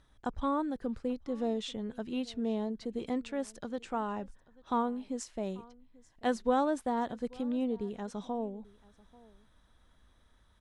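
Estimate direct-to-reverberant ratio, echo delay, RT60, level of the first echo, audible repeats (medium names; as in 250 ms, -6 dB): no reverb, 838 ms, no reverb, -23.5 dB, 1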